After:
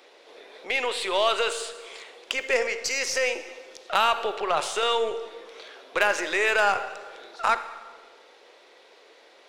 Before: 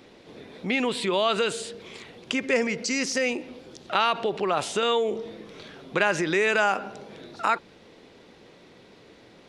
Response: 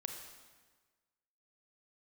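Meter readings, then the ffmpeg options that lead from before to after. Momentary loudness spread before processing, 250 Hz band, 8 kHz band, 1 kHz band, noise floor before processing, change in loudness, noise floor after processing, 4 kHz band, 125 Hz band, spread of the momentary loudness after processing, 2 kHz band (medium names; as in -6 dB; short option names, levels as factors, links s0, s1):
20 LU, -12.5 dB, +1.5 dB, +1.5 dB, -53 dBFS, 0.0 dB, -54 dBFS, +1.5 dB, under -15 dB, 20 LU, +1.5 dB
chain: -filter_complex "[0:a]highpass=f=450:w=0.5412,highpass=f=450:w=1.3066,aeval=exprs='0.376*(cos(1*acos(clip(val(0)/0.376,-1,1)))-cos(1*PI/2))+0.00944*(cos(4*acos(clip(val(0)/0.376,-1,1)))-cos(4*PI/2))+0.0376*(cos(6*acos(clip(val(0)/0.376,-1,1)))-cos(6*PI/2))+0.0335*(cos(8*acos(clip(val(0)/0.376,-1,1)))-cos(8*PI/2))':c=same,asplit=2[s0][s1];[1:a]atrim=start_sample=2205[s2];[s1][s2]afir=irnorm=-1:irlink=0,volume=1.06[s3];[s0][s3]amix=inputs=2:normalize=0,volume=0.631"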